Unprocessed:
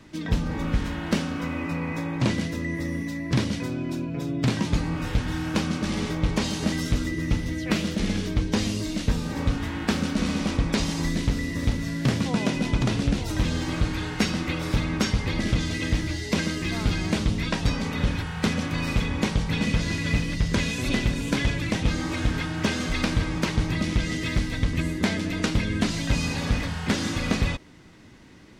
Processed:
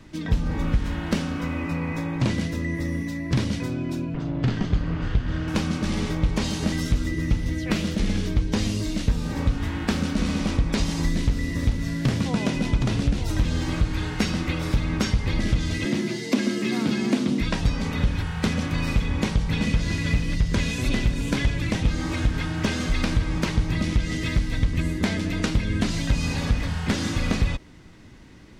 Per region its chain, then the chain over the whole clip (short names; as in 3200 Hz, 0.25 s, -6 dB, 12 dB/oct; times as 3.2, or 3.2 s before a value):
4.14–5.48 minimum comb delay 0.63 ms + air absorption 140 m
15.85–17.41 resonant high-pass 180 Hz, resonance Q 2.1 + frequency shift +41 Hz
whole clip: low shelf 81 Hz +10 dB; compressor 2.5:1, threshold -18 dBFS